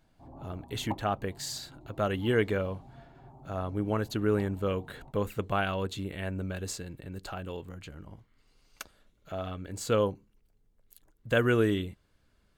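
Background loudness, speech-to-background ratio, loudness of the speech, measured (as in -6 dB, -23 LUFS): -50.0 LUFS, 18.0 dB, -32.0 LUFS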